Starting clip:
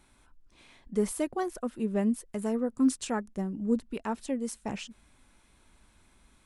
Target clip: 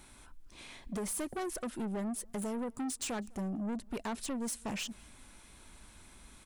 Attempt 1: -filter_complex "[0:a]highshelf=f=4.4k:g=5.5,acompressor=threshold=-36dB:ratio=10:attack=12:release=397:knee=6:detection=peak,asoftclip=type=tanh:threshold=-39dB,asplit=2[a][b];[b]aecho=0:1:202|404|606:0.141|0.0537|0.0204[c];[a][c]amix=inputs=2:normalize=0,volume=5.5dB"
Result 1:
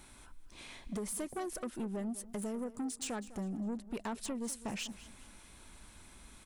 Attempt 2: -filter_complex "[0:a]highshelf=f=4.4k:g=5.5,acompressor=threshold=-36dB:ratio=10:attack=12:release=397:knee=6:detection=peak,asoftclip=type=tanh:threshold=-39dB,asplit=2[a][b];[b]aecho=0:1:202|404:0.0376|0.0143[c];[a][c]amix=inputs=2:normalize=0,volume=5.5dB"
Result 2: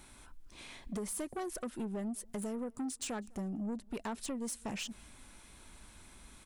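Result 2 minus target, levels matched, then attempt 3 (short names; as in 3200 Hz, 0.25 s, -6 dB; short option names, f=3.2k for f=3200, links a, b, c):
compressor: peak gain reduction +6 dB
-filter_complex "[0:a]highshelf=f=4.4k:g=5.5,acompressor=threshold=-29.5dB:ratio=10:attack=12:release=397:knee=6:detection=peak,asoftclip=type=tanh:threshold=-39dB,asplit=2[a][b];[b]aecho=0:1:202|404:0.0376|0.0143[c];[a][c]amix=inputs=2:normalize=0,volume=5.5dB"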